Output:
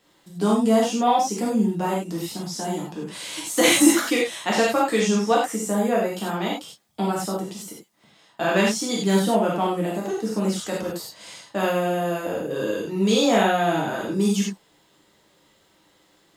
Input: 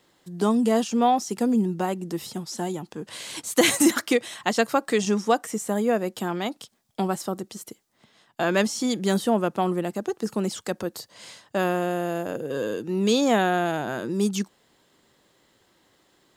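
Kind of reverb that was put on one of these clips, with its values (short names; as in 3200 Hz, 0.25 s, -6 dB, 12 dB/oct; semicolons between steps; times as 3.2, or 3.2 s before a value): non-linear reverb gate 0.12 s flat, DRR -5 dB; gain -3 dB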